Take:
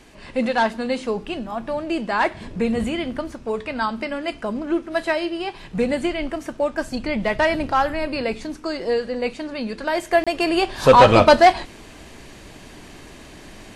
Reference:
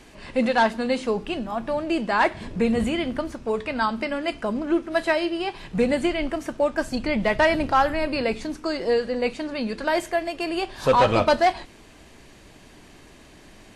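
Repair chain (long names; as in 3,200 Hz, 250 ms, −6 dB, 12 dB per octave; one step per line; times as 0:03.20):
repair the gap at 0:10.24, 26 ms
level correction −7 dB, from 0:10.11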